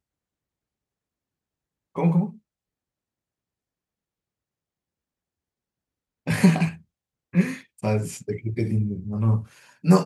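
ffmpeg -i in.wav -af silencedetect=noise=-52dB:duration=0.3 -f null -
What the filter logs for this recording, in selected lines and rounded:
silence_start: 0.00
silence_end: 1.95 | silence_duration: 1.95
silence_start: 2.39
silence_end: 6.26 | silence_duration: 3.88
silence_start: 6.82
silence_end: 7.33 | silence_duration: 0.51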